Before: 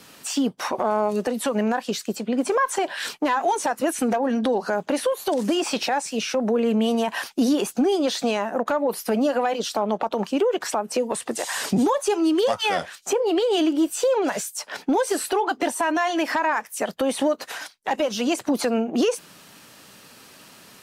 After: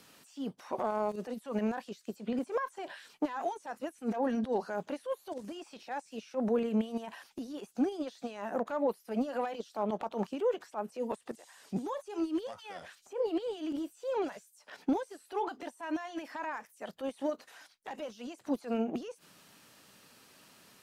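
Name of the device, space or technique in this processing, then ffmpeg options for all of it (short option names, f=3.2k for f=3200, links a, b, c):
de-esser from a sidechain: -filter_complex "[0:a]asplit=2[a][b];[b]highpass=6.4k,apad=whole_len=918266[c];[a][c]sidechaincompress=threshold=-54dB:ratio=8:attack=1:release=50,volume=-6.5dB"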